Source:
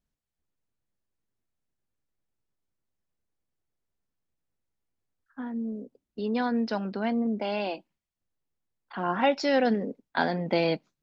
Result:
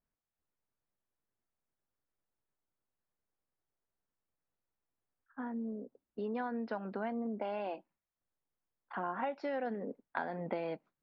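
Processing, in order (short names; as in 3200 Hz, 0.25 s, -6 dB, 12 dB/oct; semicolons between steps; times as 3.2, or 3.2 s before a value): LPF 1500 Hz 12 dB/oct; low shelf 400 Hz -10.5 dB; compressor 6:1, threshold -36 dBFS, peak gain reduction 12.5 dB; gain +2 dB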